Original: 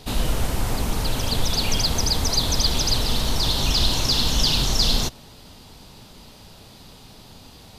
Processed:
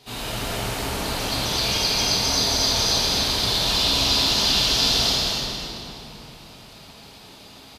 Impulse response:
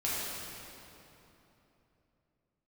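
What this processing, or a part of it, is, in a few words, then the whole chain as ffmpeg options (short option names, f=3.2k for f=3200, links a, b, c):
stadium PA: -filter_complex "[0:a]highpass=f=220:p=1,equalizer=f=2.5k:t=o:w=2.5:g=4,aecho=1:1:198.3|256.6:0.251|0.631[a];[1:a]atrim=start_sample=2205[b];[a][b]afir=irnorm=-1:irlink=0,volume=-8dB"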